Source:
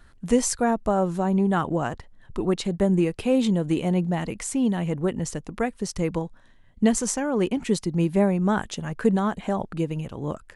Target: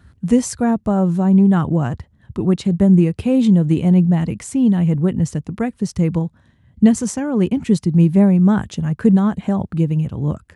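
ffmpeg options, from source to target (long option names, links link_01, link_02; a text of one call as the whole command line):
ffmpeg -i in.wav -af "highpass=frequency=69:width=0.5412,highpass=frequency=69:width=1.3066,bass=frequency=250:gain=15,treble=frequency=4000:gain=-1" out.wav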